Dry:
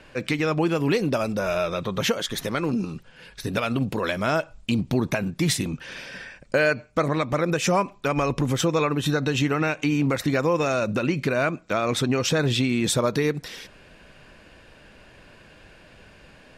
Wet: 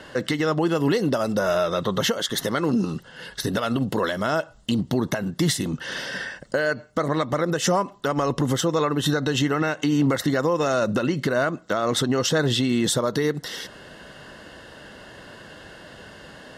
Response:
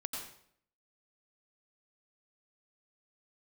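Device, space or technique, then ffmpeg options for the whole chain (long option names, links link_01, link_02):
PA system with an anti-feedback notch: -af "highpass=frequency=140:poles=1,asuperstop=centerf=2400:order=4:qfactor=4.4,alimiter=limit=-21dB:level=0:latency=1:release=434,volume=8.5dB"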